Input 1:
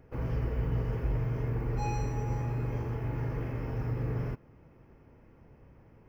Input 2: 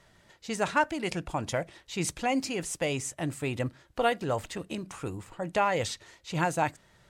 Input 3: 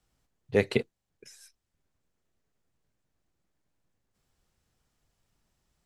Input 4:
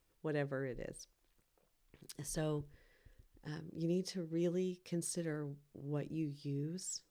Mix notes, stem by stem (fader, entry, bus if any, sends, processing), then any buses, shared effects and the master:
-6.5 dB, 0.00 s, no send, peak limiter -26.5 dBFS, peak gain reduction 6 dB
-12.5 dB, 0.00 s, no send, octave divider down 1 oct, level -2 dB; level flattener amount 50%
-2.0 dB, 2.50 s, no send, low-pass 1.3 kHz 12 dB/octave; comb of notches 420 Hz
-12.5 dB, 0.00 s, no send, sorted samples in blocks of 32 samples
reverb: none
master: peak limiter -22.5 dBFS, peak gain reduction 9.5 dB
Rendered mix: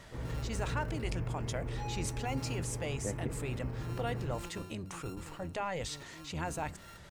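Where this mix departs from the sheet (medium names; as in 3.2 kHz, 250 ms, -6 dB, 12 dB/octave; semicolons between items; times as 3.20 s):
stem 1: missing peak limiter -26.5 dBFS, peak gain reduction 6 dB; stem 3 -2.0 dB -> -9.5 dB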